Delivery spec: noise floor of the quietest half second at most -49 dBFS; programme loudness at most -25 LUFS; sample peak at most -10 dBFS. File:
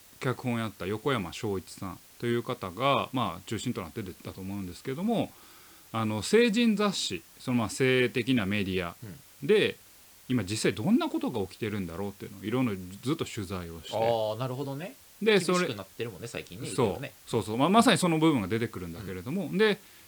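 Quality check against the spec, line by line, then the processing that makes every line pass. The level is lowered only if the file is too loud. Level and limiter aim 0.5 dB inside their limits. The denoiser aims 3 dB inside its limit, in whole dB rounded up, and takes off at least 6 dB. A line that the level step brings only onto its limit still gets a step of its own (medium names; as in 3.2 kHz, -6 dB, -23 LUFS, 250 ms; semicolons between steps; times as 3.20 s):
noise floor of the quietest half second -55 dBFS: pass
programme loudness -29.0 LUFS: pass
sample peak -8.0 dBFS: fail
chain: peak limiter -10.5 dBFS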